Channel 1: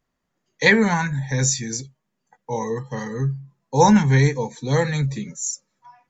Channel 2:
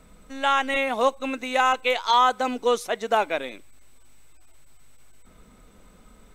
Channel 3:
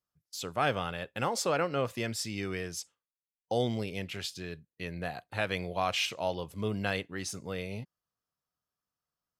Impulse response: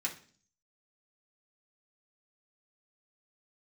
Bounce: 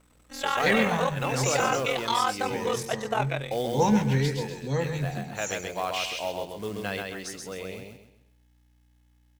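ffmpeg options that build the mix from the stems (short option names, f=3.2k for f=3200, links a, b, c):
-filter_complex "[0:a]lowshelf=f=360:g=12,volume=-11.5dB,asplit=2[a][b];[b]volume=-9.5dB[c];[1:a]alimiter=limit=-13dB:level=0:latency=1,aeval=exprs='sgn(val(0))*max(abs(val(0))-0.00211,0)':c=same,aeval=exprs='val(0)*sin(2*PI*21*n/s)':c=same,volume=-1dB,asplit=2[d][e];[e]volume=-15dB[f];[2:a]equalizer=f=280:t=o:w=2.9:g=3,aeval=exprs='val(0)+0.002*(sin(2*PI*60*n/s)+sin(2*PI*2*60*n/s)/2+sin(2*PI*3*60*n/s)/3+sin(2*PI*4*60*n/s)/4+sin(2*PI*5*60*n/s)/5)':c=same,acrusher=bits=5:mode=log:mix=0:aa=0.000001,volume=-1.5dB,asplit=2[g][h];[h]volume=-3.5dB[i];[3:a]atrim=start_sample=2205[j];[f][j]afir=irnorm=-1:irlink=0[k];[c][i]amix=inputs=2:normalize=0,aecho=0:1:131|262|393|524|655:1|0.34|0.116|0.0393|0.0134[l];[a][d][g][k][l]amix=inputs=5:normalize=0,bass=f=250:g=-8,treble=f=4k:g=1"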